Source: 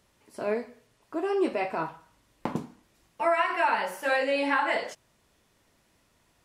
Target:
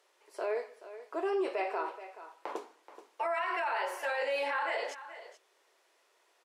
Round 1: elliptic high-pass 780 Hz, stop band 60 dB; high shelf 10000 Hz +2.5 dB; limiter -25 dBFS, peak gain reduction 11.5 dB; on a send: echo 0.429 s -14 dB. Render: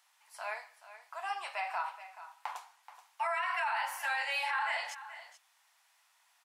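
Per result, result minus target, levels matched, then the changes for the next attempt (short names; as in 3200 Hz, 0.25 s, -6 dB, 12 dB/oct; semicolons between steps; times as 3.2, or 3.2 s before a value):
500 Hz band -11.5 dB; 8000 Hz band +5.0 dB
change: elliptic high-pass 380 Hz, stop band 60 dB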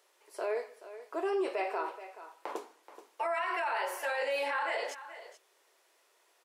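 8000 Hz band +4.0 dB
change: high shelf 10000 Hz -8.5 dB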